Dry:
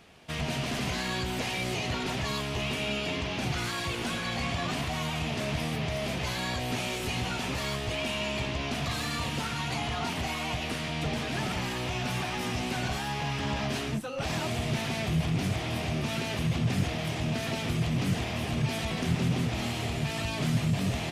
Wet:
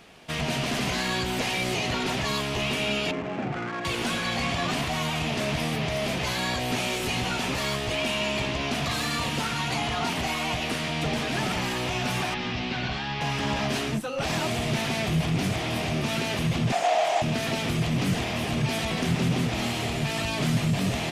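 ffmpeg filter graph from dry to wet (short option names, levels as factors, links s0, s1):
-filter_complex "[0:a]asettb=1/sr,asplit=3[s0][s1][s2];[s0]atrim=end=3.114[s3];[s1]atrim=start=3.11:end=3.85,asetpts=PTS-STARTPTS,afade=t=in:d=0.004:c=qsin,afade=t=out:st=0.736:d=0.004:c=qsin,highpass=140,lowpass=2500,bandreject=f=980:w=9.3,adynamicsmooth=sensitivity=3.5:basefreq=990[s4];[s2]atrim=start=3.846[s5];[s3][s4]acrossfade=d=0.004:c1=hsin:c2=qsin[s6];[s6][s5]acrossfade=d=0.004:c1=qsin:c2=hsin,asettb=1/sr,asplit=3[s7][s8][s9];[s7]atrim=end=12.344[s10];[s8]atrim=start=12.34:end=13.21,asetpts=PTS-STARTPTS,afade=t=in:d=0.004:c=qsin,afade=t=out:st=0.866:d=0.004:c=qsin,lowpass=f=4600:w=0.5412,lowpass=f=4600:w=1.3066,equalizer=f=580:w=0.52:g=-5[s11];[s9]atrim=start=13.206[s12];[s10][s11]acrossfade=d=0.004:c1=hsin:c2=qsin[s13];[s13][s12]acrossfade=d=0.004:c1=qsin:c2=hsin,asettb=1/sr,asplit=3[s14][s15][s16];[s14]atrim=end=16.724[s17];[s15]atrim=start=16.72:end=17.22,asetpts=PTS-STARTPTS,afade=t=in:d=0.004:c=qsin,afade=t=out:st=0.496:d=0.004:c=qsin,acrossover=split=4200[s18][s19];[s19]acompressor=threshold=0.00224:ratio=4:attack=1:release=60[s20];[s18][s20]amix=inputs=2:normalize=0,highpass=f=700:t=q:w=6.2,equalizer=f=7100:t=o:w=0.83:g=10.5[s21];[s16]atrim=start=17.216[s22];[s17][s21]acrossfade=d=0.004:c1=hsin:c2=qsin[s23];[s23][s22]acrossfade=d=0.004:c1=qsin:c2=hsin,acontrast=30,equalizer=f=81:w=1.1:g=-6.5,acontrast=29,volume=0.531"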